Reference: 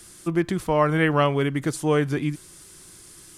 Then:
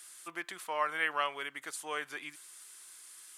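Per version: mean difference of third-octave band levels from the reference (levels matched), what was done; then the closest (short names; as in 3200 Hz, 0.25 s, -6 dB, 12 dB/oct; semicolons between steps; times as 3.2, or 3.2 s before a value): 9.5 dB: HPF 1100 Hz 12 dB/oct; bell 5400 Hz -4 dB 0.65 oct; vocal rider within 5 dB 2 s; gain -6.5 dB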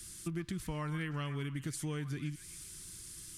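7.0 dB: passive tone stack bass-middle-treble 6-0-2; compressor, threshold -48 dBFS, peak gain reduction 12.5 dB; on a send: delay with a stepping band-pass 0.131 s, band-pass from 1100 Hz, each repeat 0.7 oct, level -8.5 dB; on the sum: gain +13 dB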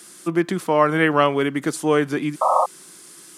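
2.5 dB: HPF 180 Hz 24 dB/oct; bell 1300 Hz +2 dB; painted sound noise, 2.41–2.66, 510–1300 Hz -20 dBFS; gain +3 dB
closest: third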